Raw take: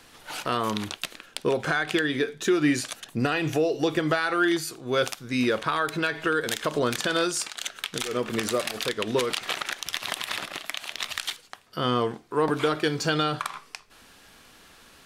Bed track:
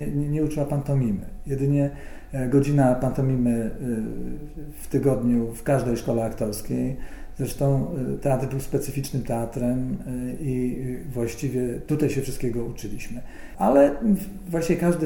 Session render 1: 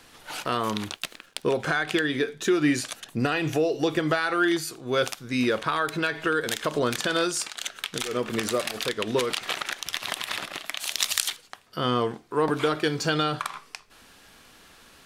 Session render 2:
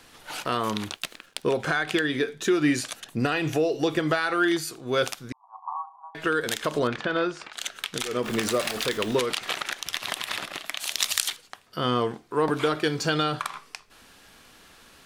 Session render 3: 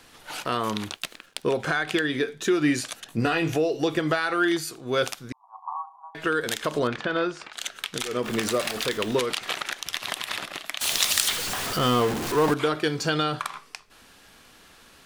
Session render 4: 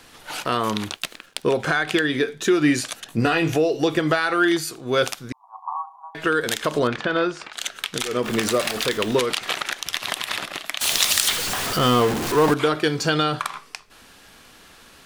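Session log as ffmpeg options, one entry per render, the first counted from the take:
-filter_complex "[0:a]asettb=1/sr,asplit=3[a][b][c];[a]atrim=end=0.444[d];[b]atrim=start=0.44:end=1.43,asetpts=PTS-STARTPTS,afade=t=in:d=0.004:c=qsin,afade=t=out:st=0.986:d=0.004:c=qsin,aeval=exprs='sgn(val(0))*max(abs(val(0))-0.00158,0)':c=same[e];[c]atrim=start=1.426[f];[d][e]acrossfade=d=0.004:c1=hsin:c2=qsin[g];[g][f]acrossfade=d=0.004:c1=qsin:c2=hsin,asplit=3[h][i][j];[h]afade=t=out:st=10.79:d=0.02[k];[i]bass=f=250:g=-2,treble=f=4k:g=14,afade=t=in:st=10.79:d=0.02,afade=t=out:st=11.27:d=0.02[l];[j]afade=t=in:st=11.27:d=0.02[m];[k][l][m]amix=inputs=3:normalize=0"
-filter_complex "[0:a]asettb=1/sr,asplit=3[a][b][c];[a]atrim=end=5.324[d];[b]atrim=start=5.32:end=6.15,asetpts=PTS-STARTPTS,afade=t=in:d=0.004:c=qsin,afade=t=out:st=0.826:d=0.004:c=qsin,asuperpass=centerf=910:order=12:qfactor=2.4[e];[c]atrim=start=6.146[f];[d][e]acrossfade=d=0.004:c1=hsin:c2=qsin[g];[g][f]acrossfade=d=0.004:c1=qsin:c2=hsin,asettb=1/sr,asplit=3[h][i][j];[h]atrim=end=6.874[k];[i]atrim=start=6.87:end=7.53,asetpts=PTS-STARTPTS,afade=t=in:d=0.004:c=qsin,afade=t=out:st=0.656:d=0.004:c=qsin,lowpass=2.3k[l];[j]atrim=start=7.526[m];[k][l]acrossfade=d=0.004:c1=hsin:c2=qsin[n];[n][m]acrossfade=d=0.004:c1=qsin:c2=hsin,asettb=1/sr,asplit=3[o][p][q];[o]atrim=end=8.244[r];[p]atrim=start=8.24:end=9.17,asetpts=PTS-STARTPTS,afade=t=in:d=0.004:c=qsin,afade=t=out:st=0.926:d=0.004:c=qsin,aeval=exprs='val(0)+0.5*0.02*sgn(val(0))':c=same[s];[q]atrim=start=9.166[t];[r][s]acrossfade=d=0.004:c1=hsin:c2=qsin[u];[u][t]acrossfade=d=0.004:c1=qsin:c2=hsin"
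-filter_complex "[0:a]asettb=1/sr,asplit=3[a][b][c];[a]atrim=end=3.084[d];[b]atrim=start=3.08:end=3.56,asetpts=PTS-STARTPTS,afade=t=in:d=0.004:c=qsin,afade=t=out:st=0.476:d=0.004:c=qsin,asplit=2[e][f];[f]adelay=18,volume=-5dB[g];[e][g]amix=inputs=2:normalize=0,atrim=end_sample=21168[h];[c]atrim=start=3.556[i];[d][h]acrossfade=d=0.004:c1=hsin:c2=qsin[j];[j][i]acrossfade=d=0.004:c1=qsin:c2=hsin,asettb=1/sr,asplit=3[k][l][m];[k]atrim=end=10.814[n];[l]atrim=start=10.81:end=12.54,asetpts=PTS-STARTPTS,afade=t=in:d=0.004:c=qsin,afade=t=out:st=1.726:d=0.004:c=qsin,aeval=exprs='val(0)+0.5*0.0631*sgn(val(0))':c=same[o];[m]atrim=start=12.536[p];[n][o]acrossfade=d=0.004:c1=hsin:c2=qsin[q];[q][p]acrossfade=d=0.004:c1=qsin:c2=hsin"
-af "volume=4dB,alimiter=limit=-1dB:level=0:latency=1"

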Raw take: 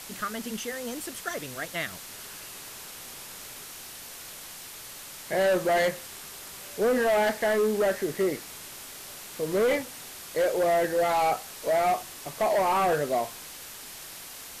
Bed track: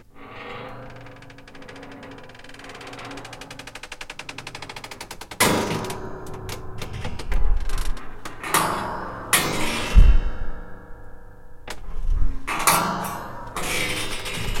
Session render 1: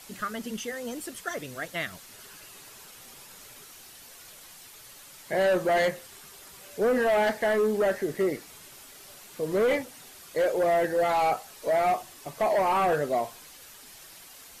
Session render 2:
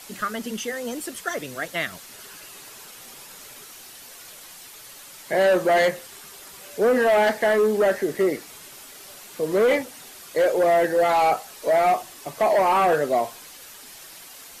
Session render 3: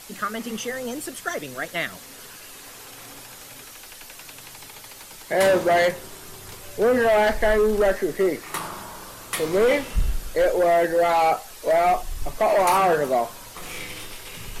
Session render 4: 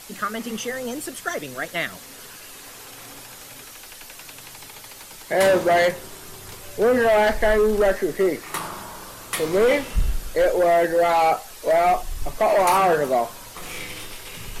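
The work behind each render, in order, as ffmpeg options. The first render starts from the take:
-af "afftdn=nr=8:nf=-43"
-filter_complex "[0:a]acrossover=split=180[a][b];[a]alimiter=level_in=18dB:limit=-24dB:level=0:latency=1,volume=-18dB[c];[b]acontrast=34[d];[c][d]amix=inputs=2:normalize=0"
-filter_complex "[1:a]volume=-10.5dB[a];[0:a][a]amix=inputs=2:normalize=0"
-af "volume=1dB"

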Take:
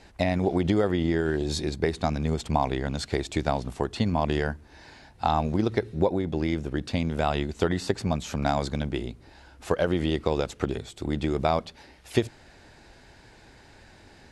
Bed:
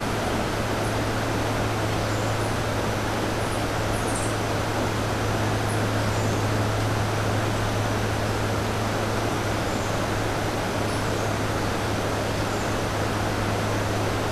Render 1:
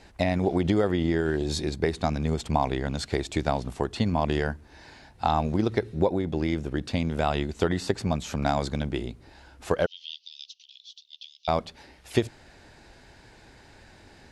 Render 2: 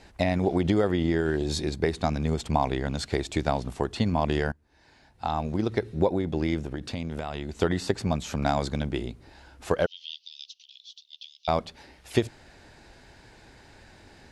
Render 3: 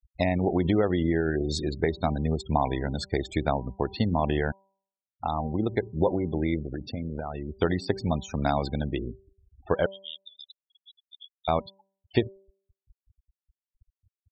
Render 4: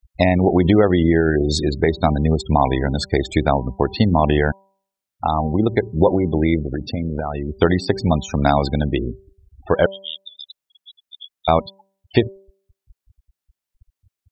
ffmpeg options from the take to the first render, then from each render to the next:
-filter_complex "[0:a]asettb=1/sr,asplit=3[a][b][c];[a]atrim=end=9.864[d];[b]atrim=start=9.86:end=11.48,asetpts=PTS-STARTPTS,afade=t=in:d=0.004:c=qsin,afade=t=out:st=1.616:d=0.004:c=qsin,asuperpass=centerf=4200:order=12:qfactor=1.3[e];[c]atrim=start=11.476[f];[d][e]acrossfade=d=0.004:c1=hsin:c2=qsin[g];[g][f]acrossfade=d=0.004:c1=qsin:c2=hsin"
-filter_complex "[0:a]asettb=1/sr,asplit=3[a][b][c];[a]atrim=end=6.624[d];[b]atrim=start=6.62:end=7.62,asetpts=PTS-STARTPTS,afade=t=in:d=0.004:c=qsin,afade=t=out:st=0.996:d=0.004:c=qsin,acompressor=threshold=-27dB:ratio=10:attack=3.2:release=140:knee=1:detection=peak[e];[c]atrim=start=7.616[f];[d][e]acrossfade=d=0.004:c1=hsin:c2=qsin[g];[g][f]acrossfade=d=0.004:c1=qsin:c2=hsin,asplit=2[h][i];[h]atrim=end=4.52,asetpts=PTS-STARTPTS,afade=t=out:st=4.516:d=0.004:c=hsin:silence=0.0944061[j];[i]atrim=start=4.52,asetpts=PTS-STARTPTS,afade=t=in:d=1.46:silence=0.0944061[k];[j][k]concat=n=2:v=0:a=1"
-af "afftfilt=real='re*gte(hypot(re,im),0.0251)':imag='im*gte(hypot(re,im),0.0251)':win_size=1024:overlap=0.75,bandreject=f=194.5:t=h:w=4,bandreject=f=389:t=h:w=4,bandreject=f=583.5:t=h:w=4,bandreject=f=778:t=h:w=4,bandreject=f=972.5:t=h:w=4"
-af "volume=9.5dB,alimiter=limit=-1dB:level=0:latency=1"

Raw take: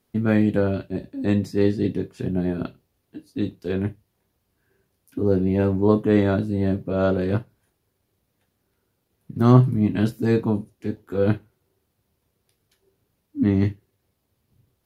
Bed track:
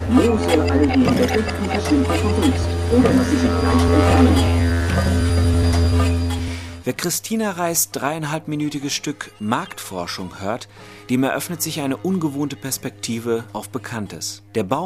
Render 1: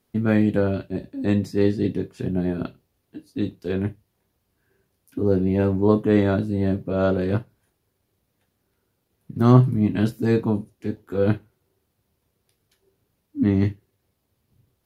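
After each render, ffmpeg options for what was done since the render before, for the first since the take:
-af anull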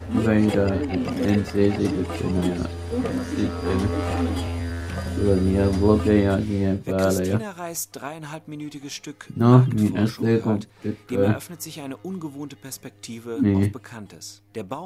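-filter_complex "[1:a]volume=-11dB[a];[0:a][a]amix=inputs=2:normalize=0"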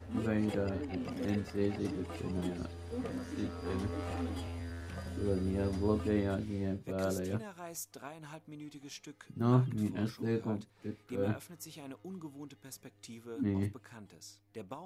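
-af "volume=-13.5dB"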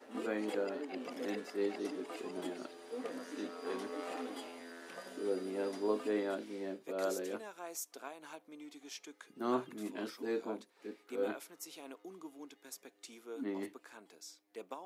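-af "highpass=f=300:w=0.5412,highpass=f=300:w=1.3066"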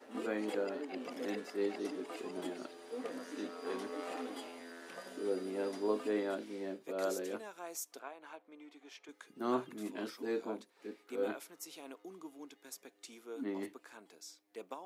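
-filter_complex "[0:a]asettb=1/sr,asplit=3[a][b][c];[a]atrim=end=7.994[d];[b]atrim=start=7.99:end=9.09,asetpts=PTS-STARTPTS,afade=t=in:d=0.004:c=qsin,afade=t=out:st=1.096:d=0.004:c=qsin,bass=f=250:g=-12,treble=f=4k:g=-14[e];[c]atrim=start=9.086[f];[d][e]acrossfade=d=0.004:c1=hsin:c2=qsin[g];[g][f]acrossfade=d=0.004:c1=qsin:c2=hsin"

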